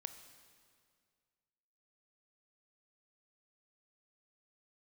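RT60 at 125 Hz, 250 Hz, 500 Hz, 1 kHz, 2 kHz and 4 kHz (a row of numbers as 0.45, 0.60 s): 2.3, 2.1, 2.1, 2.0, 1.9, 1.8 s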